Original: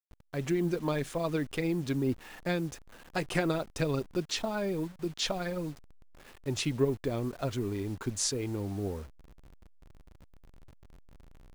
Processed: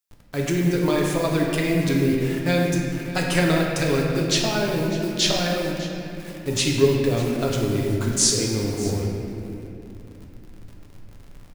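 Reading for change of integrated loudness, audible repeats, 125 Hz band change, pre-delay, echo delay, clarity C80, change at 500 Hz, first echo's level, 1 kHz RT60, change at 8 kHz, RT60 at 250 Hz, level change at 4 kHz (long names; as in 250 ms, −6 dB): +10.5 dB, 1, +11.0 dB, 7 ms, 600 ms, 1.5 dB, +10.0 dB, −16.5 dB, 2.4 s, +13.5 dB, 4.2 s, +12.5 dB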